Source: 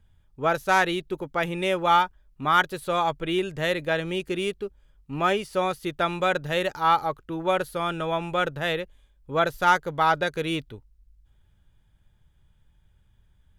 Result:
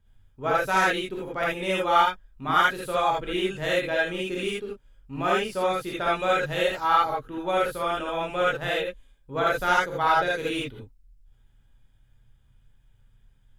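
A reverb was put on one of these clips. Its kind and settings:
reverb whose tail is shaped and stops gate 100 ms rising, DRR −5.5 dB
level −6 dB

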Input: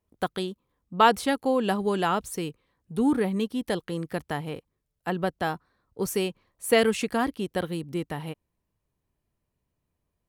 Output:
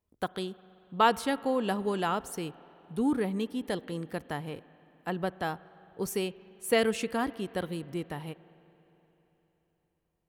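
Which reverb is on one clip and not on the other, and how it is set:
spring reverb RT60 3.8 s, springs 43/58 ms, chirp 75 ms, DRR 18.5 dB
level −4.5 dB

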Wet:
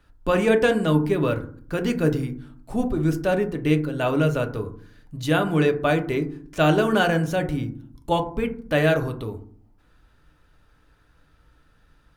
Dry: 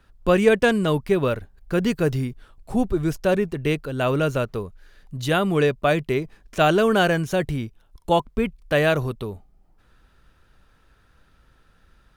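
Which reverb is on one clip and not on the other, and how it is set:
feedback delay network reverb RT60 0.51 s, low-frequency decay 1.6×, high-frequency decay 0.35×, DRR 5 dB
level −2.5 dB

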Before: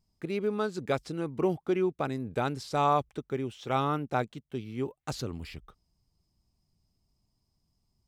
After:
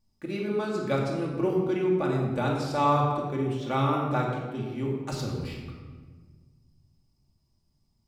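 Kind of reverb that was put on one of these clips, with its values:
rectangular room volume 1,300 cubic metres, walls mixed, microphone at 2.4 metres
level −2 dB

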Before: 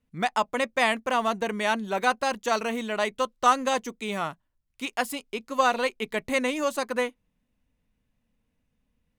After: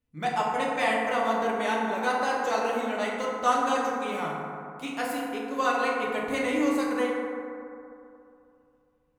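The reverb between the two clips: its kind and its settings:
feedback delay network reverb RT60 2.7 s, high-frequency decay 0.3×, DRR −5 dB
level −7.5 dB

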